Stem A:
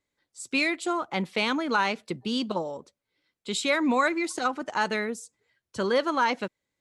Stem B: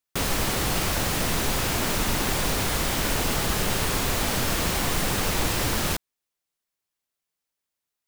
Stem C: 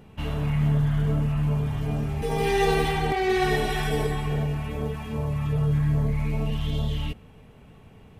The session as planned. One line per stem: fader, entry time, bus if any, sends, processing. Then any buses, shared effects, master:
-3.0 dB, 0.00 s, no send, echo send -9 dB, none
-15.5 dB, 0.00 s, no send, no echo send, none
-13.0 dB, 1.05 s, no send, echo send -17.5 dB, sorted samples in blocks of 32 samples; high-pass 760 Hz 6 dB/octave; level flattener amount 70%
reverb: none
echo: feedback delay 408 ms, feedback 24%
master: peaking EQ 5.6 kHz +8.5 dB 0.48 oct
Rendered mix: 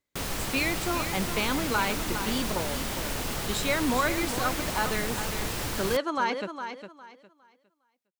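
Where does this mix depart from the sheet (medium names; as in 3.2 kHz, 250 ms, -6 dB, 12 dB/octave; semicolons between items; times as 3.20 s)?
stem B -15.5 dB -> -7.0 dB; stem C: muted; master: missing peaking EQ 5.6 kHz +8.5 dB 0.48 oct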